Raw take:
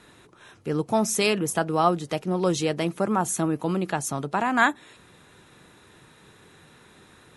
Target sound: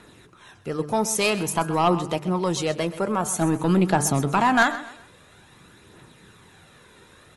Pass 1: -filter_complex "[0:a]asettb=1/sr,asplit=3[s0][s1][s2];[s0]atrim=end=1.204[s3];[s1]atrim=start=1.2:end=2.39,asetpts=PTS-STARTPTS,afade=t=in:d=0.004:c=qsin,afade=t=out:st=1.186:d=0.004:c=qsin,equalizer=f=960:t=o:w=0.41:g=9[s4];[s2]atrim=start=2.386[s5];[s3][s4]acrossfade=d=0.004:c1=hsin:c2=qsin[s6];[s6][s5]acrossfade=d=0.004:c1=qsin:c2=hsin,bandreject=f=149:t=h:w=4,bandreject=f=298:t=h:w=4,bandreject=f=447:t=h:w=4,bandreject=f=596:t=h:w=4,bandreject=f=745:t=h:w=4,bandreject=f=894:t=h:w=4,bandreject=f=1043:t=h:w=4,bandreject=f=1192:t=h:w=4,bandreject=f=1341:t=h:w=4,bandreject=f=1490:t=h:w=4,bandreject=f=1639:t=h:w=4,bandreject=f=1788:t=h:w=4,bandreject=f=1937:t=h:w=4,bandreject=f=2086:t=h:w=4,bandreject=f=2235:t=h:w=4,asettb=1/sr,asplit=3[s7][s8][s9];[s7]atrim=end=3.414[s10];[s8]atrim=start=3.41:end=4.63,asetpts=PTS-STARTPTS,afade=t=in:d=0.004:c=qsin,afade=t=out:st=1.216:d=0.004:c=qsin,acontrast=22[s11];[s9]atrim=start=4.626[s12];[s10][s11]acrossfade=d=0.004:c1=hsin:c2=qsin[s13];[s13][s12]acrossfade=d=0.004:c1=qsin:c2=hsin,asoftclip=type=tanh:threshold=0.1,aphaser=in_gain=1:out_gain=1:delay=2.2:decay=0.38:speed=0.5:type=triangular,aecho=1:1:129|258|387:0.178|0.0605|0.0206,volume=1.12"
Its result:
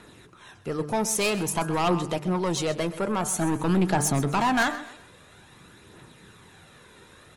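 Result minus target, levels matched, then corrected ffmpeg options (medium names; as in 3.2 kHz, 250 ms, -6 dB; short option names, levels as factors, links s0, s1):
saturation: distortion +8 dB
-filter_complex "[0:a]asettb=1/sr,asplit=3[s0][s1][s2];[s0]atrim=end=1.204[s3];[s1]atrim=start=1.2:end=2.39,asetpts=PTS-STARTPTS,afade=t=in:d=0.004:c=qsin,afade=t=out:st=1.186:d=0.004:c=qsin,equalizer=f=960:t=o:w=0.41:g=9[s4];[s2]atrim=start=2.386[s5];[s3][s4]acrossfade=d=0.004:c1=hsin:c2=qsin[s6];[s6][s5]acrossfade=d=0.004:c1=qsin:c2=hsin,bandreject=f=149:t=h:w=4,bandreject=f=298:t=h:w=4,bandreject=f=447:t=h:w=4,bandreject=f=596:t=h:w=4,bandreject=f=745:t=h:w=4,bandreject=f=894:t=h:w=4,bandreject=f=1043:t=h:w=4,bandreject=f=1192:t=h:w=4,bandreject=f=1341:t=h:w=4,bandreject=f=1490:t=h:w=4,bandreject=f=1639:t=h:w=4,bandreject=f=1788:t=h:w=4,bandreject=f=1937:t=h:w=4,bandreject=f=2086:t=h:w=4,bandreject=f=2235:t=h:w=4,asettb=1/sr,asplit=3[s7][s8][s9];[s7]atrim=end=3.414[s10];[s8]atrim=start=3.41:end=4.63,asetpts=PTS-STARTPTS,afade=t=in:d=0.004:c=qsin,afade=t=out:st=1.216:d=0.004:c=qsin,acontrast=22[s11];[s9]atrim=start=4.626[s12];[s10][s11]acrossfade=d=0.004:c1=hsin:c2=qsin[s13];[s13][s12]acrossfade=d=0.004:c1=qsin:c2=hsin,asoftclip=type=tanh:threshold=0.266,aphaser=in_gain=1:out_gain=1:delay=2.2:decay=0.38:speed=0.5:type=triangular,aecho=1:1:129|258|387:0.178|0.0605|0.0206,volume=1.12"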